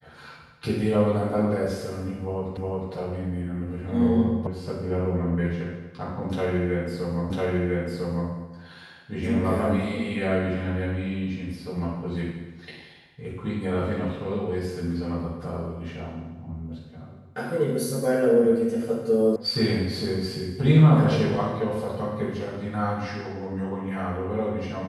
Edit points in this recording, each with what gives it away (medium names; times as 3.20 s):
2.57 s: repeat of the last 0.36 s
4.47 s: sound stops dead
7.30 s: repeat of the last 1 s
19.36 s: sound stops dead